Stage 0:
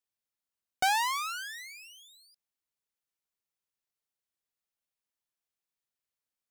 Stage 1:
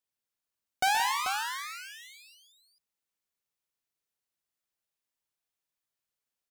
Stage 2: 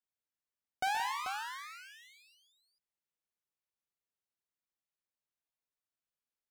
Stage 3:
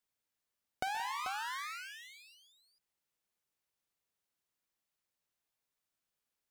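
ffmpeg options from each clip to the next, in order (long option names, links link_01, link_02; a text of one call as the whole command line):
ffmpeg -i in.wav -af "aecho=1:1:48|124|143|174|438:0.237|0.237|0.237|0.251|0.422" out.wav
ffmpeg -i in.wav -af "highshelf=frequency=3700:gain=-7,volume=-6dB" out.wav
ffmpeg -i in.wav -af "acompressor=threshold=-41dB:ratio=6,volume=5.5dB" out.wav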